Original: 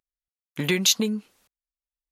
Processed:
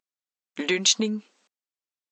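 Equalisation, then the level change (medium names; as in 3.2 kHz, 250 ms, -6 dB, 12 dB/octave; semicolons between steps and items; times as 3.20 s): brick-wall FIR band-pass 190–8300 Hz; 0.0 dB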